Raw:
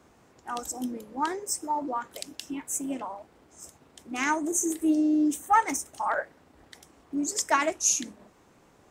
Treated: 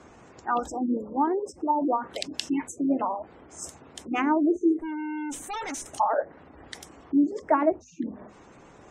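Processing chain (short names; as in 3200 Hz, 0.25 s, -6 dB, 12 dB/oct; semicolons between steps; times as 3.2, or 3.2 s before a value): 4.8–5.86 tube stage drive 40 dB, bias 0.5; spectral gate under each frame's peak -25 dB strong; treble ducked by the level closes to 650 Hz, closed at -26 dBFS; notches 50/100/150/200/250 Hz; gain +8.5 dB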